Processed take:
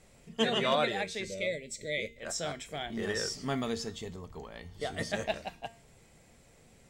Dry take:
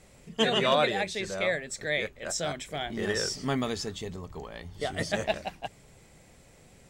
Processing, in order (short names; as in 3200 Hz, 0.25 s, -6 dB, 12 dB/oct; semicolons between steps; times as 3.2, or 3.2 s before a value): spectral gain 1.24–2.18, 650–1900 Hz -23 dB; resonator 230 Hz, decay 0.43 s, harmonics all, mix 60%; gain +3 dB